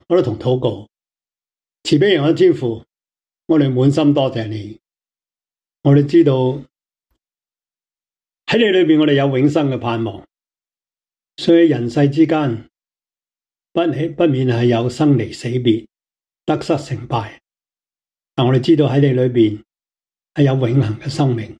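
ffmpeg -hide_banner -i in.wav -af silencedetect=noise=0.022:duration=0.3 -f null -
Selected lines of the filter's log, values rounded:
silence_start: 0.83
silence_end: 1.85 | silence_duration: 1.02
silence_start: 2.81
silence_end: 3.49 | silence_duration: 0.69
silence_start: 4.76
silence_end: 5.85 | silence_duration: 1.09
silence_start: 6.63
silence_end: 8.48 | silence_duration: 1.85
silence_start: 10.24
silence_end: 11.38 | silence_duration: 1.14
silence_start: 12.62
silence_end: 13.75 | silence_duration: 1.14
silence_start: 15.85
silence_end: 16.48 | silence_duration: 0.63
silence_start: 17.35
silence_end: 18.38 | silence_duration: 1.03
silence_start: 19.60
silence_end: 20.36 | silence_duration: 0.76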